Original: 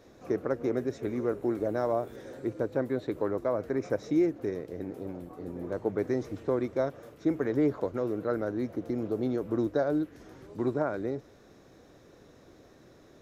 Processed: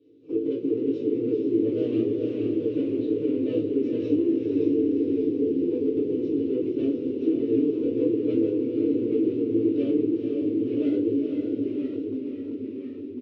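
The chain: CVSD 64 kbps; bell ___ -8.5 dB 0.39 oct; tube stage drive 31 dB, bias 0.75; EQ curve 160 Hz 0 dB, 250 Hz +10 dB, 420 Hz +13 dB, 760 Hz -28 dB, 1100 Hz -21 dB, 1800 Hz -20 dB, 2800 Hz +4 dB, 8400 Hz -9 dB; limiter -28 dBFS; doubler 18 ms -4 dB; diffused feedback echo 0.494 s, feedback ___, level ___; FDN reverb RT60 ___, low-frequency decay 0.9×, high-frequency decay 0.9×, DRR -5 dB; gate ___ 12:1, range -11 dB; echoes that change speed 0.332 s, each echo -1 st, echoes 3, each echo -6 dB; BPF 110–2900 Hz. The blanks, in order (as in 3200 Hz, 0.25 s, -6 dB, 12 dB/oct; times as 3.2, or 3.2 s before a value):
220 Hz, 54%, -4 dB, 0.35 s, -34 dBFS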